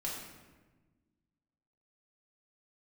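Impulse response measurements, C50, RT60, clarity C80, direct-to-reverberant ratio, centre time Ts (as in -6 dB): 2.0 dB, 1.3 s, 4.5 dB, -5.5 dB, 61 ms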